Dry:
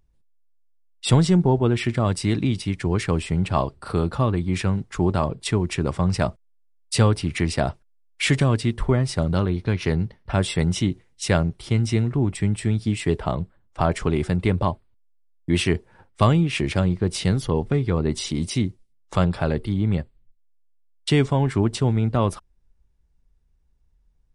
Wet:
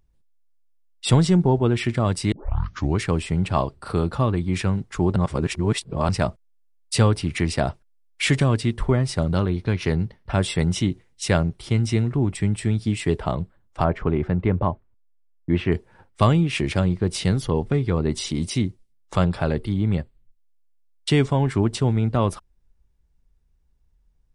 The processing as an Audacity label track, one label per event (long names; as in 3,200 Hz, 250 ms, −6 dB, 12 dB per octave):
2.320000	2.320000	tape start 0.66 s
5.160000	6.090000	reverse
13.840000	15.720000	low-pass filter 1,800 Hz